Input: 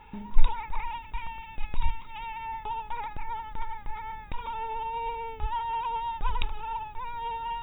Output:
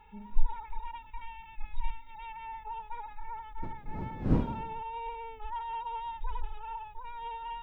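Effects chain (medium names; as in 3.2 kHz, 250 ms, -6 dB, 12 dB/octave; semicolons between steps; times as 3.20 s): harmonic-percussive separation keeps harmonic; 3.62–4.81 s: wind noise 210 Hz -31 dBFS; trim -6 dB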